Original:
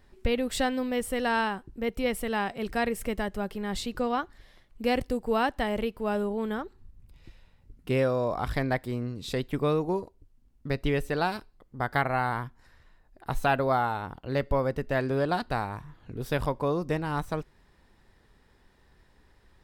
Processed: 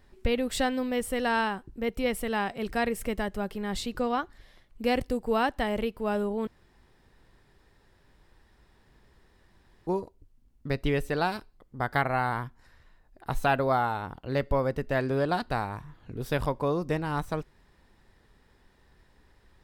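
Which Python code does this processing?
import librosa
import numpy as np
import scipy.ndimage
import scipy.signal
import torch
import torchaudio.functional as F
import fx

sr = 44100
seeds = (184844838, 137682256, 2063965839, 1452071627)

y = fx.edit(x, sr, fx.room_tone_fill(start_s=6.47, length_s=3.4), tone=tone)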